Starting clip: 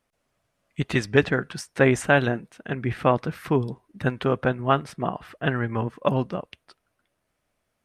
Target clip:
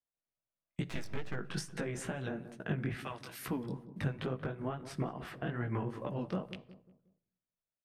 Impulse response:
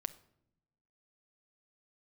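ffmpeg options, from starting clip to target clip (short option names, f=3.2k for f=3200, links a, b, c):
-filter_complex "[0:a]agate=range=-30dB:threshold=-43dB:ratio=16:detection=peak,asettb=1/sr,asplit=3[a][b][c];[a]atrim=end=3.004[d];[b]atrim=start=3:end=3.46,asetpts=PTS-STARTPTS,afade=t=in:d=0.004:c=qsin,afade=t=out:st=0.456:d=0.004:c=qsin,aderivative[e];[c]atrim=start=3.456[f];[d][e]acrossfade=d=0.004:c1=hsin:c2=qsin[g];[g][f]acrossfade=d=0.004:c1=qsin:c2=hsin,acompressor=threshold=-31dB:ratio=6,alimiter=level_in=2dB:limit=-24dB:level=0:latency=1:release=264,volume=-2dB,acrossover=split=460[h][i];[i]acompressor=threshold=-42dB:ratio=6[j];[h][j]amix=inputs=2:normalize=0,asettb=1/sr,asplit=3[k][l][m];[k]atrim=end=0.844[n];[l]atrim=start=0.84:end=1.34,asetpts=PTS-STARTPTS,afade=t=in:d=0.004:c=qsin,afade=t=out:st=0.496:d=0.004:c=qsin,aeval=exprs='max(val(0),0)':c=same[o];[m]atrim=start=1.336[p];[n][o]acrossfade=d=0.004:c1=hsin:c2=qsin[q];[q][p]acrossfade=d=0.004:c1=qsin:c2=hsin,flanger=delay=15.5:depth=7:speed=2.3,asplit=2[r][s];[s]adelay=182,lowpass=f=850:p=1,volume=-12dB,asplit=2[t][u];[u]adelay=182,lowpass=f=850:p=1,volume=0.41,asplit=2[v][w];[w]adelay=182,lowpass=f=850:p=1,volume=0.41,asplit=2[x][y];[y]adelay=182,lowpass=f=850:p=1,volume=0.41[z];[r][t][v][x][z]amix=inputs=5:normalize=0,asplit=2[aa][ab];[1:a]atrim=start_sample=2205[ac];[ab][ac]afir=irnorm=-1:irlink=0,volume=4.5dB[ad];[aa][ad]amix=inputs=2:normalize=0,volume=-2dB"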